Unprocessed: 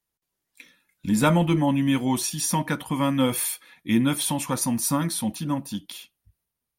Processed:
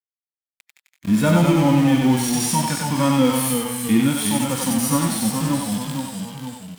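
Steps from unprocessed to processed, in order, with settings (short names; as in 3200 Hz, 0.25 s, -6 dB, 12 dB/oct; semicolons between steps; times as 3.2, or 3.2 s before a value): notches 60/120/180/240/300 Hz; in parallel at +1 dB: compressor, threshold -31 dBFS, peak gain reduction 15 dB; on the sum: sample gate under -27 dBFS; echoes that change speed 0.13 s, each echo -1 st, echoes 3, each echo -6 dB; on a send: thinning echo 94 ms, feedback 28%, high-pass 540 Hz, level -3.5 dB; on the sum: harmonic-percussive split percussive -15 dB; gain +3 dB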